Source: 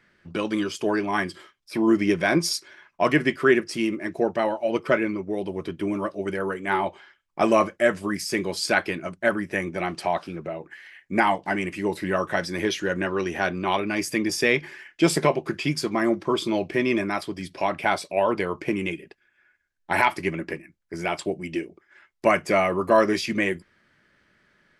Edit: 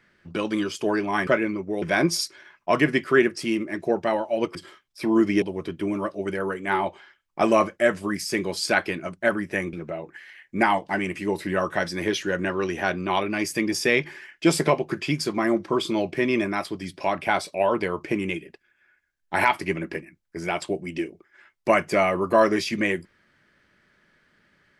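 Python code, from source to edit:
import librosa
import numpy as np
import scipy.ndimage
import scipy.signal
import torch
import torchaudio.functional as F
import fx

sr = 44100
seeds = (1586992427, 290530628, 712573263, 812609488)

y = fx.edit(x, sr, fx.swap(start_s=1.27, length_s=0.87, other_s=4.87, other_length_s=0.55),
    fx.cut(start_s=9.73, length_s=0.57), tone=tone)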